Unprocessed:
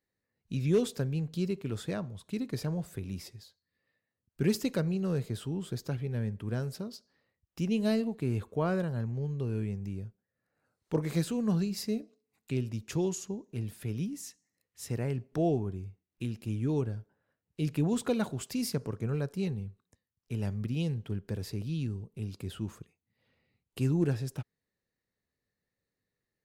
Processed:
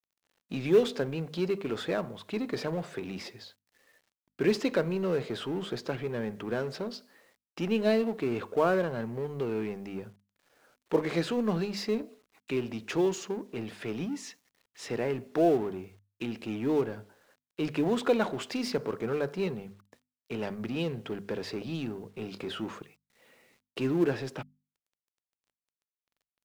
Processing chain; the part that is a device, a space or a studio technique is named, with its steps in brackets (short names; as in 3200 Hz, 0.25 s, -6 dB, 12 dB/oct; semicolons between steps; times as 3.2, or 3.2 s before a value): phone line with mismatched companding (BPF 330–3200 Hz; G.711 law mismatch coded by mu); notches 50/100/150/200/250 Hz; 22.15–22.79 doubler 26 ms -11.5 dB; gain +6 dB